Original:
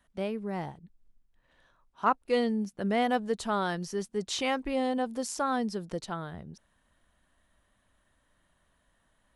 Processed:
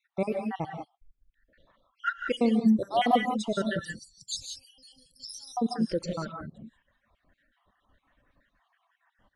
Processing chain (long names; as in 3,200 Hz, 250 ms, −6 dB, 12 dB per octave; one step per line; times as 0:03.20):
time-frequency cells dropped at random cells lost 67%
low-pass that shuts in the quiet parts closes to 2,900 Hz, open at −30 dBFS
0:03.79–0:05.57: inverse Chebyshev band-stop filter 210–2,300 Hz, stop band 40 dB
reverb whose tail is shaped and stops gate 210 ms rising, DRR 2 dB
reverb reduction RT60 0.72 s
level +6.5 dB